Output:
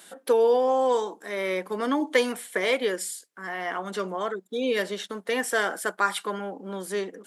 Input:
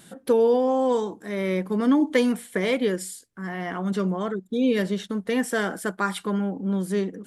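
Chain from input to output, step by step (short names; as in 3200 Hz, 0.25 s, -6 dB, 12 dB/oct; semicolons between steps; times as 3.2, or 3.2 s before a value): HPF 490 Hz 12 dB/oct; gain +2.5 dB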